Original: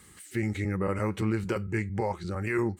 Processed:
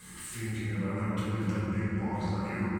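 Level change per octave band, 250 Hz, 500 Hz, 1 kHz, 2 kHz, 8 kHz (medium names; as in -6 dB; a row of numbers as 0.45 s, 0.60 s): -1.5 dB, -7.5 dB, -2.5 dB, -4.0 dB, +4.0 dB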